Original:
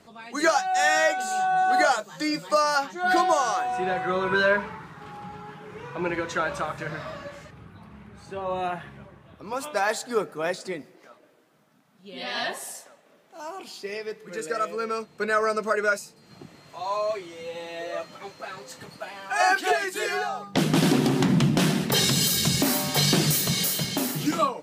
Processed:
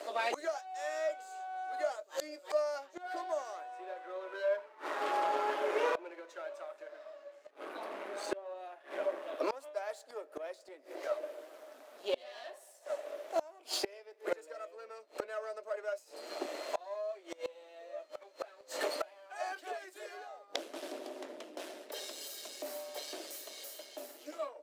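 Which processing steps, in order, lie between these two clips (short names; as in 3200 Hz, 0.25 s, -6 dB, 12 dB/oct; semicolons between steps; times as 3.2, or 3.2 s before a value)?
half-wave gain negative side -7 dB; steep high-pass 300 Hz 48 dB/oct; bell 600 Hz +15 dB 0.32 oct; flipped gate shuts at -30 dBFS, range -29 dB; gain +9.5 dB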